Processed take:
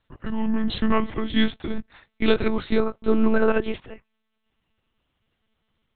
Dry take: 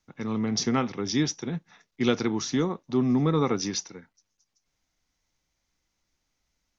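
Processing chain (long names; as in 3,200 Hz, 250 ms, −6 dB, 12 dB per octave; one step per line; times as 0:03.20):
gliding playback speed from 76% → 152%
one-pitch LPC vocoder at 8 kHz 220 Hz
level +5.5 dB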